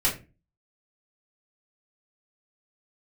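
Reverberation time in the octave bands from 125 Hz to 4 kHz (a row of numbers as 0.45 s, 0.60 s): 0.50 s, 0.45 s, 0.35 s, 0.25 s, 0.25 s, 0.20 s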